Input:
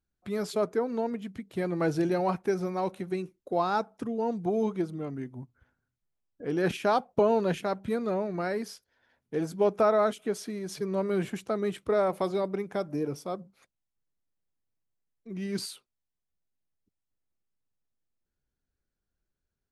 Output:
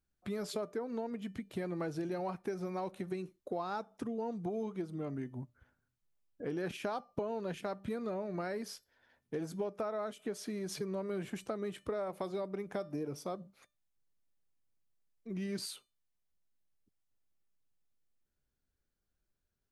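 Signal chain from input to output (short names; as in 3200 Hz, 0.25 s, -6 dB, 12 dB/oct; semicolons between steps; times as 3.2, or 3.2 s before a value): resonator 600 Hz, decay 0.29 s, mix 50%; compressor 6:1, threshold -40 dBFS, peak gain reduction 14.5 dB; gain +5 dB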